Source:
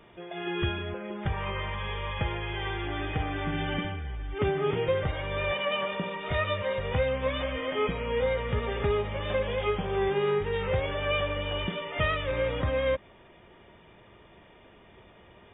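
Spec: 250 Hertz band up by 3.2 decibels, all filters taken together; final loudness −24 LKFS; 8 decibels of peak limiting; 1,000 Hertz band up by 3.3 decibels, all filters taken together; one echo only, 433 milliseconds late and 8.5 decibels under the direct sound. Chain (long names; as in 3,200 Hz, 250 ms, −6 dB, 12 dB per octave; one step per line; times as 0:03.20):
parametric band 250 Hz +4.5 dB
parametric band 1,000 Hz +4 dB
brickwall limiter −22 dBFS
single-tap delay 433 ms −8.5 dB
level +6.5 dB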